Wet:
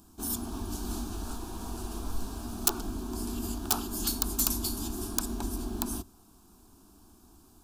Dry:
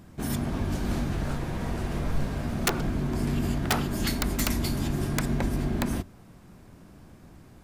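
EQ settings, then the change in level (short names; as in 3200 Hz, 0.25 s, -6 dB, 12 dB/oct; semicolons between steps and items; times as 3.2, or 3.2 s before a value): high shelf 4300 Hz +12 dB; fixed phaser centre 540 Hz, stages 6; -4.5 dB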